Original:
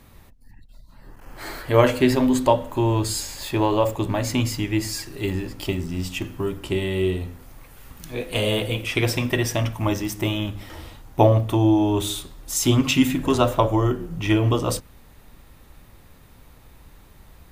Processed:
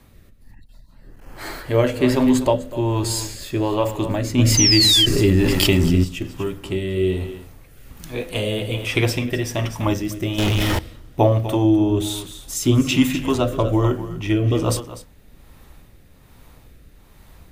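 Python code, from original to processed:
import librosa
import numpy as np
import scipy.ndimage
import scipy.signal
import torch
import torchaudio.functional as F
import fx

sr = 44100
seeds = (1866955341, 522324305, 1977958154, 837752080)

p1 = x + fx.echo_single(x, sr, ms=249, db=-13.0, dry=0)
p2 = fx.leveller(p1, sr, passes=5, at=(10.38, 10.79))
p3 = fx.rotary(p2, sr, hz=1.2)
p4 = fx.spec_paint(p3, sr, seeds[0], shape='fall', start_s=4.57, length_s=0.49, low_hz=3000.0, high_hz=6300.0, level_db=-25.0)
p5 = fx.env_flatten(p4, sr, amount_pct=70, at=(4.37, 6.03), fade=0.02)
y = p5 * 10.0 ** (2.5 / 20.0)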